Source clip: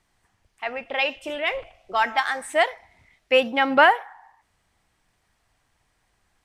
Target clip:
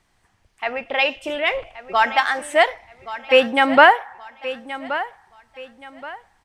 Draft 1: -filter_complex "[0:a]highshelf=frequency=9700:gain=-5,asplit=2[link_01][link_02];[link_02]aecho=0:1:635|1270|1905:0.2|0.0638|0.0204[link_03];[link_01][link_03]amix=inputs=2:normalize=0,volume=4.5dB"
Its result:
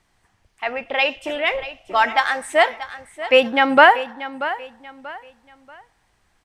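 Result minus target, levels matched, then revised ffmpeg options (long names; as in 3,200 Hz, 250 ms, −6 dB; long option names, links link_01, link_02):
echo 490 ms early
-filter_complex "[0:a]highshelf=frequency=9700:gain=-5,asplit=2[link_01][link_02];[link_02]aecho=0:1:1125|2250|3375:0.2|0.0638|0.0204[link_03];[link_01][link_03]amix=inputs=2:normalize=0,volume=4.5dB"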